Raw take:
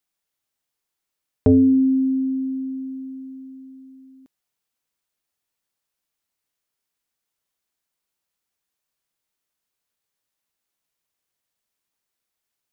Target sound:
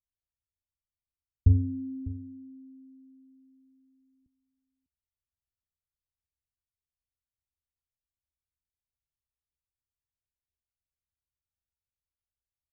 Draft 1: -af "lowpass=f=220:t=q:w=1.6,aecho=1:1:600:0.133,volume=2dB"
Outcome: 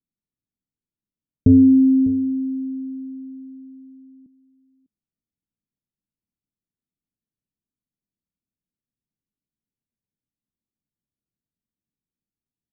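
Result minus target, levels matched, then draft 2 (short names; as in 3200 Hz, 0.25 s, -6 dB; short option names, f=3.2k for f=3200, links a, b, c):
125 Hz band -10.5 dB
-af "lowpass=f=75:t=q:w=1.6,aecho=1:1:600:0.133,volume=2dB"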